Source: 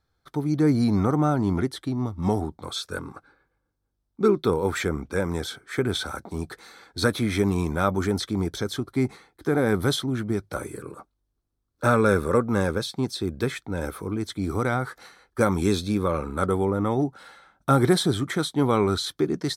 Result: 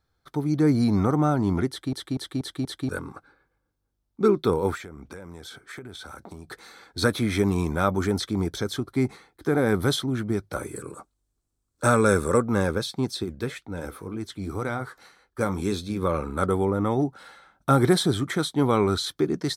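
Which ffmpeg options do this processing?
ffmpeg -i in.wav -filter_complex "[0:a]asettb=1/sr,asplit=3[link_01][link_02][link_03];[link_01]atrim=end=4.754[link_04];[link_02]atrim=start=4.75:end=6.5,asetpts=PTS-STARTPTS,afade=type=in:duration=0.004:curve=qsin,afade=type=out:start_time=1.746:duration=0.004:curve=qsin,acompressor=threshold=-36dB:ratio=12:attack=3.2:release=140:knee=1:detection=peak[link_05];[link_03]atrim=start=6.496[link_06];[link_04][link_05]acrossfade=duration=0.004:curve1=hsin:curve2=qsin[link_07];[link_07][link_06]acrossfade=duration=0.004:curve1=qsin:curve2=hsin,asettb=1/sr,asplit=3[link_08][link_09][link_10];[link_08]atrim=end=10.764[link_11];[link_09]atrim=start=10.76:end=12.42,asetpts=PTS-STARTPTS,afade=type=in:duration=0.004:curve=qsin,afade=type=out:start_time=1.656:duration=0.004:curve=qsin,equalizer=frequency=7800:width_type=o:width=0.72:gain=11.5[link_12];[link_10]atrim=start=12.416[link_13];[link_11][link_12]acrossfade=duration=0.004:curve1=hsin:curve2=qsin[link_14];[link_14][link_13]acrossfade=duration=0.004:curve1=qsin:curve2=hsin,asplit=3[link_15][link_16][link_17];[link_15]afade=type=out:start_time=13.23:duration=0.02[link_18];[link_16]flanger=delay=3.4:depth=5.8:regen=-73:speed=1.9:shape=sinusoidal,afade=type=in:start_time=13.23:duration=0.02,afade=type=out:start_time=16.01:duration=0.02[link_19];[link_17]afade=type=in:start_time=16.01:duration=0.02[link_20];[link_18][link_19][link_20]amix=inputs=3:normalize=0,asplit=6[link_21][link_22][link_23][link_24][link_25][link_26];[link_21]atrim=end=1.932[link_27];[link_22]atrim=start=1.688:end=1.932[link_28];[link_23]atrim=start=1.688:end=1.932[link_29];[link_24]atrim=start=1.688:end=1.932[link_30];[link_25]atrim=start=1.688:end=1.932[link_31];[link_26]atrim=start=2.888[link_32];[link_27][link_28]acrossfade=duration=0.004:curve1=hsin:curve2=hsin[link_33];[link_33][link_29]acrossfade=duration=0.004:curve1=hsin:curve2=hsin[link_34];[link_34][link_30]acrossfade=duration=0.004:curve1=hsin:curve2=hsin[link_35];[link_35][link_31]acrossfade=duration=0.004:curve1=hsin:curve2=hsin[link_36];[link_36][link_32]acrossfade=duration=0.004:curve1=hsin:curve2=hsin" out.wav

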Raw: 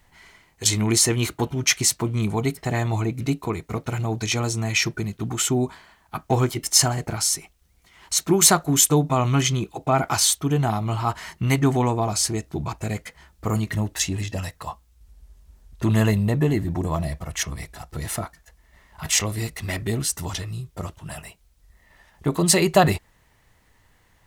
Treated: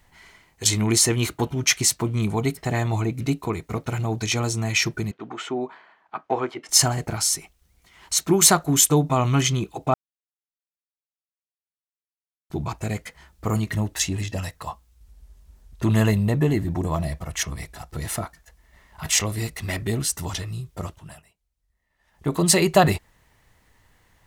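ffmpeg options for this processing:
ffmpeg -i in.wav -filter_complex "[0:a]asettb=1/sr,asplit=3[link_01][link_02][link_03];[link_01]atrim=end=5.114[link_04];[link_02]atrim=start=5.11:end=6.69,asetpts=PTS-STARTPTS,afade=type=in:duration=0.004:curve=qsin,afade=type=out:start_time=1.576:duration=0.004:curve=qsin,highpass=370,lowpass=2300[link_05];[link_03]atrim=start=6.686[link_06];[link_04][link_05]acrossfade=duration=0.004:curve1=hsin:curve2=qsin[link_07];[link_07][link_06]acrossfade=duration=0.004:curve1=qsin:curve2=hsin,asplit=5[link_08][link_09][link_10][link_11][link_12];[link_08]atrim=end=9.94,asetpts=PTS-STARTPTS,afade=type=out:start_time=9.936:duration=0.004:curve=hsin[link_13];[link_09]atrim=start=9.94:end=12.5,asetpts=PTS-STARTPTS,volume=0[link_14];[link_10]atrim=start=12.5:end=21.24,asetpts=PTS-STARTPTS,afade=type=in:duration=0.004:curve=hsin,afade=type=out:start_time=8.36:duration=0.38:silence=0.11885[link_15];[link_11]atrim=start=21.24:end=21.98,asetpts=PTS-STARTPTS,volume=-18.5dB[link_16];[link_12]atrim=start=21.98,asetpts=PTS-STARTPTS,afade=type=in:duration=0.38:silence=0.11885[link_17];[link_13][link_14][link_15][link_16][link_17]concat=n=5:v=0:a=1" out.wav

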